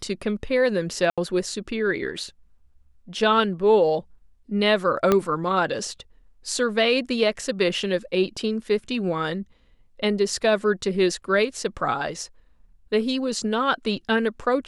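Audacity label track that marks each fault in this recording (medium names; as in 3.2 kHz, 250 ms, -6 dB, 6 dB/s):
1.100000	1.180000	dropout 76 ms
5.120000	5.120000	pop -6 dBFS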